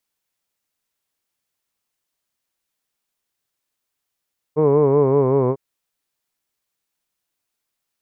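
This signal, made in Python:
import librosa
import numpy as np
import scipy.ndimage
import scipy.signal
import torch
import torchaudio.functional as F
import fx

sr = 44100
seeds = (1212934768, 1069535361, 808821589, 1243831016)

y = fx.vowel(sr, seeds[0], length_s=1.0, word='hood', hz=149.0, glide_st=-2.5, vibrato_hz=5.3, vibrato_st=0.9)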